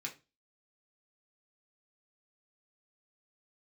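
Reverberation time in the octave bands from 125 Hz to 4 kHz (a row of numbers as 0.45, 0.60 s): 0.40, 0.35, 0.30, 0.25, 0.25, 0.25 s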